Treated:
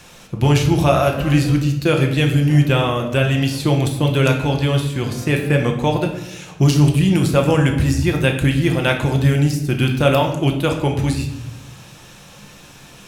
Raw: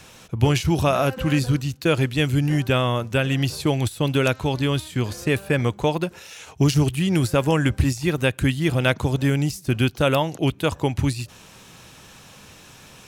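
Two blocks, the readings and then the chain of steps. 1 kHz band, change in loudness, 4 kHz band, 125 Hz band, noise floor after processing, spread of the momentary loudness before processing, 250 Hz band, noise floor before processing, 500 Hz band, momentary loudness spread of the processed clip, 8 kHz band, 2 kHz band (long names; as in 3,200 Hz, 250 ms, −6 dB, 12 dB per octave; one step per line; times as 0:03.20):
+4.0 dB, +4.5 dB, +3.0 dB, +5.5 dB, −43 dBFS, 5 LU, +4.5 dB, −47 dBFS, +4.0 dB, 6 LU, +3.0 dB, +3.5 dB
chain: rectangular room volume 320 cubic metres, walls mixed, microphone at 0.86 metres
level +1.5 dB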